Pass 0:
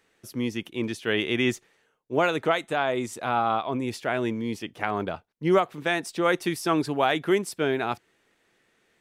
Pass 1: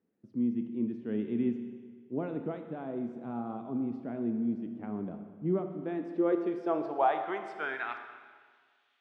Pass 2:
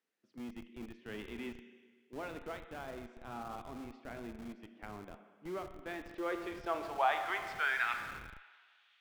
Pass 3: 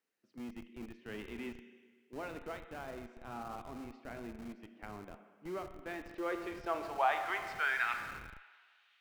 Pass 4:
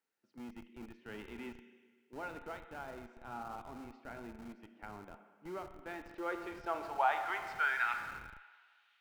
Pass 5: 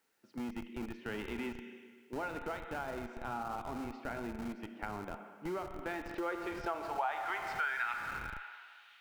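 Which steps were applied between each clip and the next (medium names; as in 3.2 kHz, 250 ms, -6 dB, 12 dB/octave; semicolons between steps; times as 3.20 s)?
band-pass sweep 220 Hz -> 3.2 kHz, 5.66–8.56 s; distance through air 79 m; Schroeder reverb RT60 1.7 s, combs from 26 ms, DRR 6.5 dB
band-pass filter 2.6 kHz, Q 0.71; tilt EQ +2 dB/octave; in parallel at -9 dB: Schmitt trigger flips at -49.5 dBFS; on the sum: trim +3.5 dB
band-stop 3.4 kHz, Q 14
small resonant body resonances 880/1400 Hz, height 8 dB, ringing for 25 ms; trim -3 dB
compression 3:1, threshold -49 dBFS, peak gain reduction 17.5 dB; trim +11.5 dB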